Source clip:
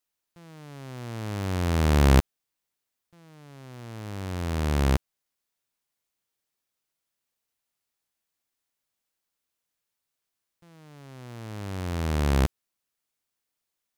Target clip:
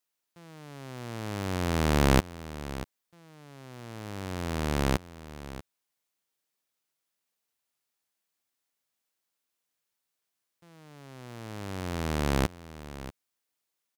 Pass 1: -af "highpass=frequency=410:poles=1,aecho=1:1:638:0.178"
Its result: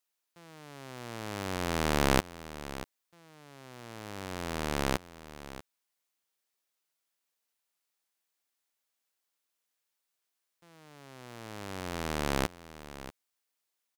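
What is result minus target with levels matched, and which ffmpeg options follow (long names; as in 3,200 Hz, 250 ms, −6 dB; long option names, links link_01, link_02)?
125 Hz band −4.0 dB
-af "highpass=frequency=150:poles=1,aecho=1:1:638:0.178"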